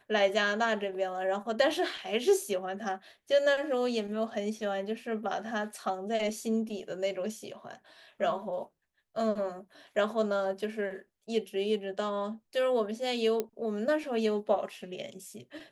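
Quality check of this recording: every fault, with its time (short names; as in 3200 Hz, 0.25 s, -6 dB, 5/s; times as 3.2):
13.4 pop -17 dBFS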